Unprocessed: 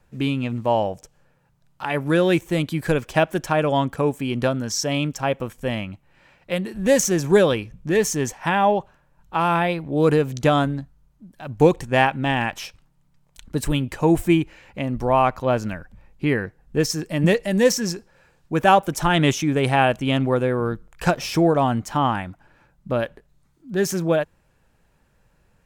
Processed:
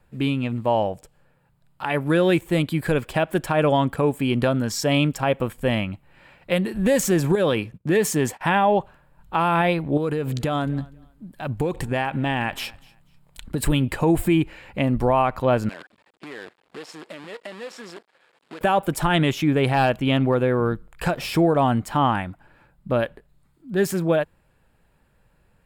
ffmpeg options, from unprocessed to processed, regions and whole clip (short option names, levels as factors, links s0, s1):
-filter_complex "[0:a]asettb=1/sr,asplit=3[s0][s1][s2];[s0]atrim=end=7.354[s3];[s1]atrim=start=7.35:end=8.41,asetpts=PTS-STARTPTS,afade=t=in:d=0.004:c=qsin,afade=t=out:st=1.056:d=0.004:c=qsin,agate=range=0.0708:threshold=0.00708:ratio=16:release=100:detection=peak,highpass=100,acompressor=threshold=0.112:ratio=4:attack=3.2:release=140:knee=1:detection=peak[s4];[s2]atrim=start=8.406[s5];[s3][s4]acrossfade=d=0.004:c1=hsin:c2=qsin[s6];[s6][s5]acrossfade=d=0.004:c1=qsin:c2=hsin,asettb=1/sr,asplit=3[s7][s8][s9];[s7]atrim=end=9.974[s10];[s8]atrim=start=9.97:end=13.64,asetpts=PTS-STARTPTS,afade=t=in:d=0.004:c=qsin,afade=t=out:st=3.666:d=0.004:c=qsin,acompressor=threshold=0.0631:ratio=10:attack=3.2:release=140:knee=1:detection=peak,aecho=1:1:244|488:0.0631|0.0145,atrim=end_sample=161847[s11];[s9]atrim=start=13.636[s12];[s10][s11]acrossfade=d=0.004:c1=hsin:c2=qsin[s13];[s13][s12]acrossfade=d=0.004:c1=qsin:c2=hsin,asettb=1/sr,asplit=3[s14][s15][s16];[s14]atrim=end=15.694[s17];[s15]atrim=start=15.69:end=18.61,asetpts=PTS-STARTPTS,afade=t=in:d=0.004:c=qsin,afade=t=out:st=2.916:d=0.004:c=qsin,acompressor=threshold=0.0282:ratio=16:attack=3.2:release=140:knee=1:detection=peak,acrusher=bits=7:dc=4:mix=0:aa=0.000001,highpass=360,lowpass=5700[s18];[s16]atrim=start=18.606[s19];[s17][s18]acrossfade=d=0.004:c1=hsin:c2=qsin[s20];[s20][s19]acrossfade=d=0.004:c1=qsin:c2=hsin,asettb=1/sr,asplit=3[s21][s22][s23];[s21]atrim=end=19.294[s24];[s22]atrim=start=19.29:end=20.72,asetpts=PTS-STARTPTS,afade=t=in:d=0.004:c=qsin,afade=t=out:st=1.426:d=0.004:c=qsin,equalizer=f=8800:t=o:w=0.37:g=-8.5,aeval=exprs='clip(val(0),-1,0.237)':c=same[s25];[s23]atrim=start=20.716[s26];[s24][s25]acrossfade=d=0.004:c1=hsin:c2=qsin[s27];[s27][s26]acrossfade=d=0.004:c1=qsin:c2=hsin,dynaudnorm=f=630:g=11:m=3.76,equalizer=f=6000:w=4:g=-13,alimiter=limit=0.316:level=0:latency=1:release=99"